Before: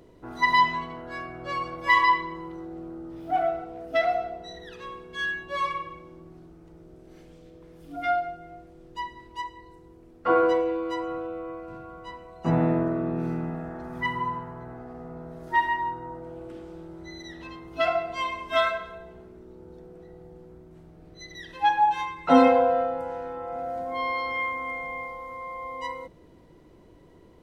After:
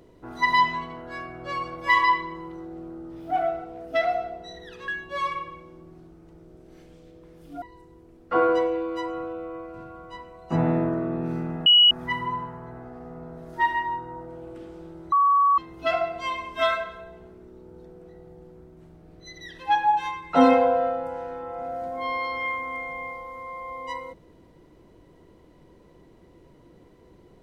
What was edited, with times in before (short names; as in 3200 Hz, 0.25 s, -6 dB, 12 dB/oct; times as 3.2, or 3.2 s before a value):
4.88–5.27 cut
8.01–9.56 cut
13.6–13.85 bleep 2920 Hz -11.5 dBFS
17.06–17.52 bleep 1130 Hz -15.5 dBFS